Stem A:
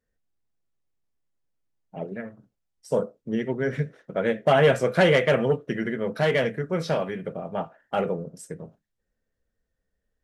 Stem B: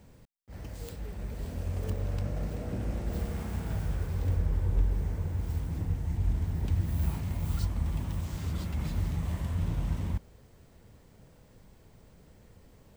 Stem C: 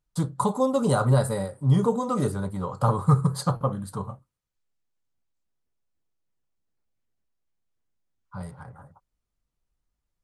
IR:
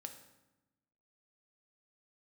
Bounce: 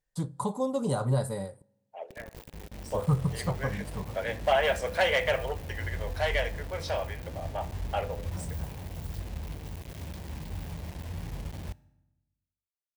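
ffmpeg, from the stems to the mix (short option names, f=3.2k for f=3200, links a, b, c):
-filter_complex "[0:a]highpass=f=610:w=0.5412,highpass=f=610:w=1.3066,volume=-3.5dB,asplit=2[a][b];[b]volume=-7.5dB[c];[1:a]equalizer=f=7.4k:t=o:w=1.5:g=-13.5,acrusher=bits=5:mix=0:aa=0.000001,adelay=1550,volume=-9dB,asplit=2[d][e];[e]volume=-8dB[f];[2:a]volume=-7dB,asplit=3[g][h][i];[g]atrim=end=1.62,asetpts=PTS-STARTPTS,afade=t=out:st=1.616:d=0.004:c=hsin[j];[h]atrim=start=1.62:end=2.94,asetpts=PTS-STARTPTS,volume=0[k];[i]atrim=start=2.94,asetpts=PTS-STARTPTS,afade=t=in:d=0.004:c=hsin[l];[j][k][l]concat=n=3:v=0:a=1,asplit=2[m][n];[n]volume=-15dB[o];[3:a]atrim=start_sample=2205[p];[c][f][o]amix=inputs=3:normalize=0[q];[q][p]afir=irnorm=-1:irlink=0[r];[a][d][m][r]amix=inputs=4:normalize=0,equalizer=f=1.3k:w=3.1:g=-7"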